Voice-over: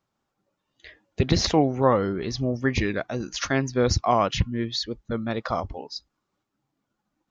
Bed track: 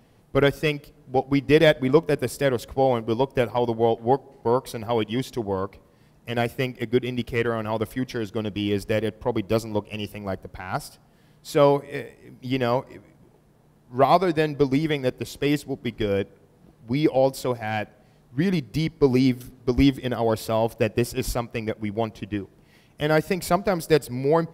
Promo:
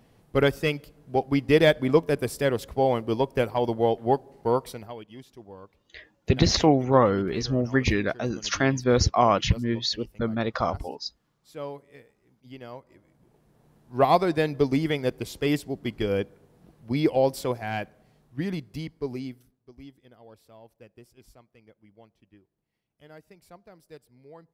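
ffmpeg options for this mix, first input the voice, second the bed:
-filter_complex "[0:a]adelay=5100,volume=1dB[a];[1:a]volume=14.5dB,afade=t=out:st=4.6:d=0.36:silence=0.149624,afade=t=in:st=12.81:d=0.92:silence=0.149624,afade=t=out:st=17.41:d=2.19:silence=0.0501187[b];[a][b]amix=inputs=2:normalize=0"

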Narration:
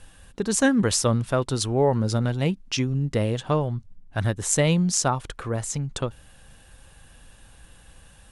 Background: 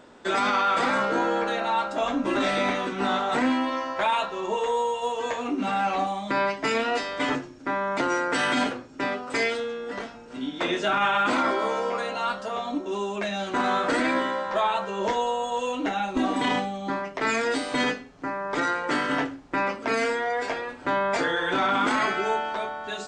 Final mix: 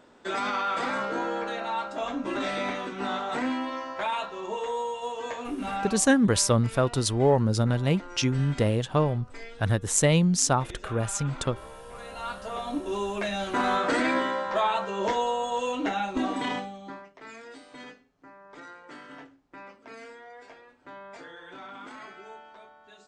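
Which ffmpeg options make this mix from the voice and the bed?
-filter_complex "[0:a]adelay=5450,volume=-0.5dB[a];[1:a]volume=12.5dB,afade=t=out:st=5.79:d=0.24:silence=0.211349,afade=t=in:st=11.87:d=1.01:silence=0.125893,afade=t=out:st=15.91:d=1.23:silence=0.112202[b];[a][b]amix=inputs=2:normalize=0"

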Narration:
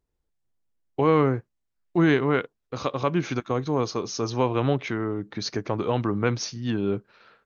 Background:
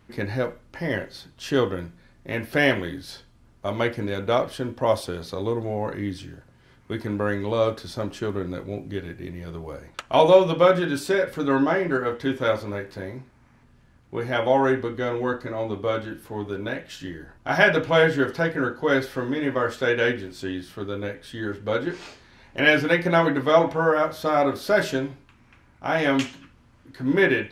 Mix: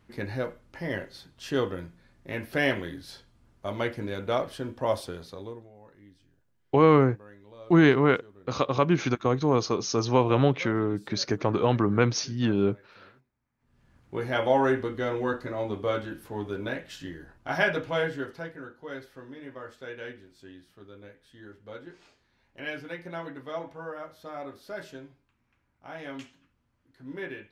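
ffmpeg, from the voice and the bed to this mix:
-filter_complex "[0:a]adelay=5750,volume=1.5dB[a];[1:a]volume=17dB,afade=t=out:st=5.02:d=0.68:silence=0.1,afade=t=in:st=13.58:d=0.4:silence=0.0749894,afade=t=out:st=16.75:d=1.88:silence=0.177828[b];[a][b]amix=inputs=2:normalize=0"

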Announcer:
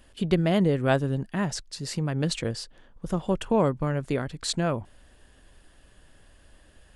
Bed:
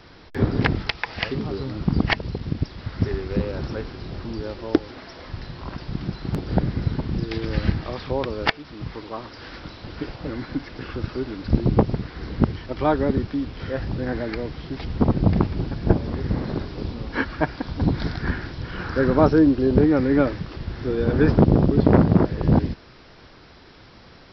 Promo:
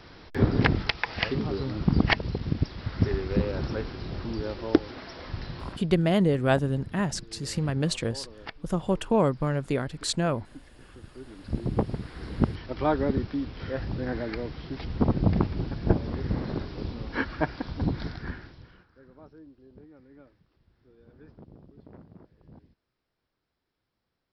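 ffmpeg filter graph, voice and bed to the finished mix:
-filter_complex "[0:a]adelay=5600,volume=0dB[a];[1:a]volume=13dB,afade=t=out:st=5.61:d=0.26:silence=0.133352,afade=t=in:st=11.09:d=1.27:silence=0.188365,afade=t=out:st=17.62:d=1.24:silence=0.0316228[b];[a][b]amix=inputs=2:normalize=0"

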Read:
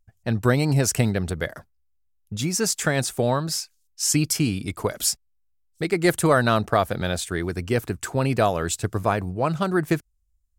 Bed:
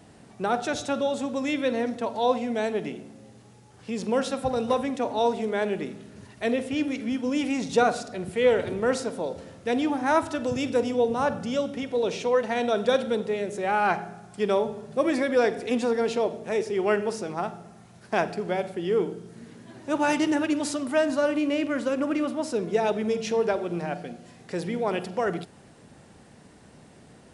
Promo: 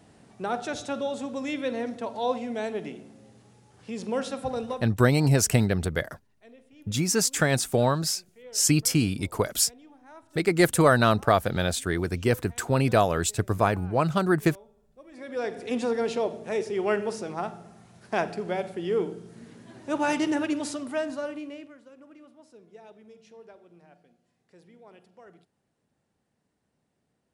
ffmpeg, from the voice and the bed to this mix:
-filter_complex "[0:a]adelay=4550,volume=-0.5dB[a];[1:a]volume=21dB,afade=t=out:st=4.58:d=0.32:silence=0.0707946,afade=t=in:st=15.11:d=0.72:silence=0.0562341,afade=t=out:st=20.43:d=1.34:silence=0.0707946[b];[a][b]amix=inputs=2:normalize=0"

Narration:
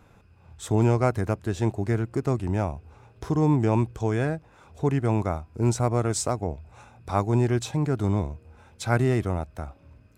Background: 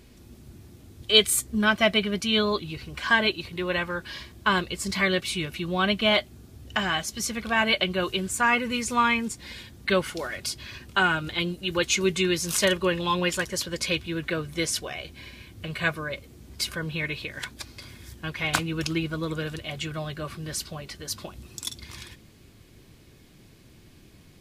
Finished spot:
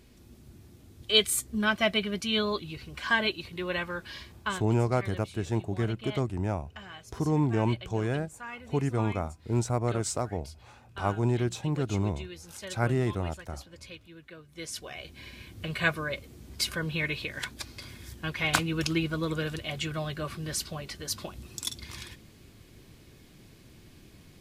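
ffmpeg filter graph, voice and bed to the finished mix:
-filter_complex "[0:a]adelay=3900,volume=-4.5dB[a];[1:a]volume=14.5dB,afade=t=out:st=4.35:d=0.28:silence=0.177828,afade=t=in:st=14.48:d=1.01:silence=0.112202[b];[a][b]amix=inputs=2:normalize=0"

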